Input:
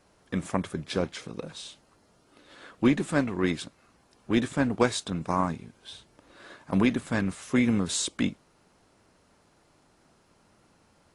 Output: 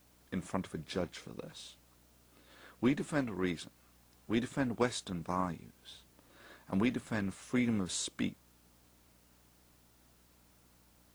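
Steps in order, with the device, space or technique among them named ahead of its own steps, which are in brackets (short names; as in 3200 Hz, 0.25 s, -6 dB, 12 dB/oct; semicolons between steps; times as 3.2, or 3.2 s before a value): video cassette with head-switching buzz (buzz 60 Hz, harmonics 5, -61 dBFS -4 dB/oct; white noise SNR 31 dB); gain -8 dB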